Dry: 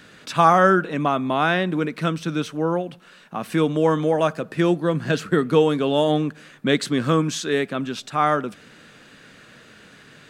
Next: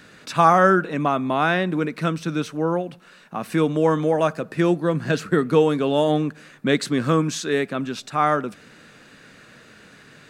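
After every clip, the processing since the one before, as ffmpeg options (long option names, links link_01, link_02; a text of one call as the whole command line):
ffmpeg -i in.wav -af "equalizer=frequency=3200:width=5.7:gain=-5" out.wav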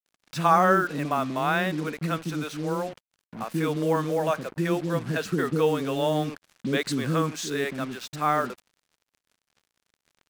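ffmpeg -i in.wav -filter_complex "[0:a]acrossover=split=390[link_01][link_02];[link_02]adelay=60[link_03];[link_01][link_03]amix=inputs=2:normalize=0,acrusher=bits=5:mix=0:aa=0.5,volume=-4dB" out.wav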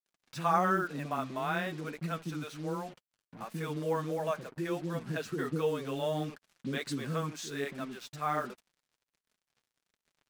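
ffmpeg -i in.wav -af "flanger=delay=4.5:depth=3.9:regen=-23:speed=1.4:shape=sinusoidal,volume=-5dB" out.wav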